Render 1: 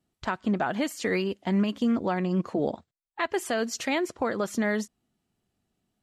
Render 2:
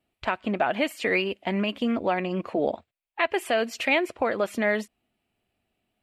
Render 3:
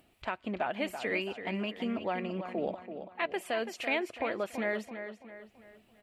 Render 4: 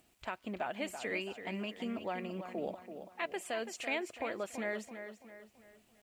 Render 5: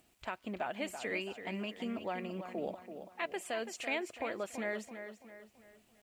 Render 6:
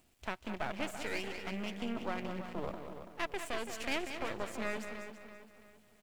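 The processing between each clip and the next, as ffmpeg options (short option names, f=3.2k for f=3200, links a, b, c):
-af "equalizer=f=160:t=o:w=0.67:g=-7,equalizer=f=630:t=o:w=0.67:g=6,equalizer=f=2.5k:t=o:w=0.67:g=11,equalizer=f=6.3k:t=o:w=0.67:g=-9"
-filter_complex "[0:a]acompressor=mode=upward:threshold=-42dB:ratio=2.5,asplit=2[a][b];[b]adelay=333,lowpass=f=4.5k:p=1,volume=-9dB,asplit=2[c][d];[d]adelay=333,lowpass=f=4.5k:p=1,volume=0.43,asplit=2[e][f];[f]adelay=333,lowpass=f=4.5k:p=1,volume=0.43,asplit=2[g][h];[h]adelay=333,lowpass=f=4.5k:p=1,volume=0.43,asplit=2[i][j];[j]adelay=333,lowpass=f=4.5k:p=1,volume=0.43[k];[c][e][g][i][k]amix=inputs=5:normalize=0[l];[a][l]amix=inputs=2:normalize=0,volume=-8.5dB"
-af "equalizer=f=7.4k:w=1.6:g=10.5,acrusher=bits=10:mix=0:aa=0.000001,volume=-5dB"
-af anull
-filter_complex "[0:a]aecho=1:1:191|222:0.376|0.141,acrossover=split=190[a][b];[b]aeval=exprs='max(val(0),0)':c=same[c];[a][c]amix=inputs=2:normalize=0,volume=3dB"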